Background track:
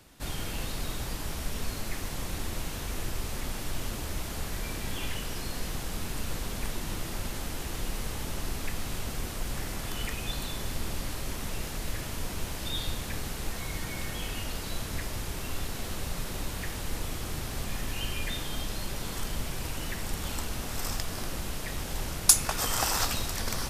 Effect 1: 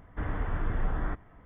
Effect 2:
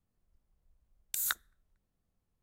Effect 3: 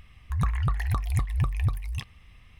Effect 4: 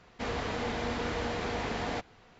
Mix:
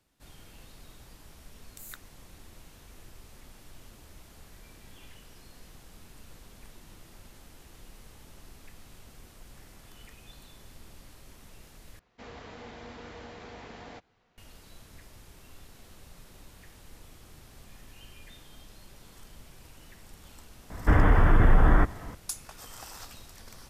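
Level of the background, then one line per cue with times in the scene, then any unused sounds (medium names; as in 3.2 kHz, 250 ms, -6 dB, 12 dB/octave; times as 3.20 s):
background track -17 dB
0.63 s: add 2 -13.5 dB
11.99 s: replace with 4 -12 dB
20.70 s: add 1 -9 dB + loudness maximiser +22.5 dB
not used: 3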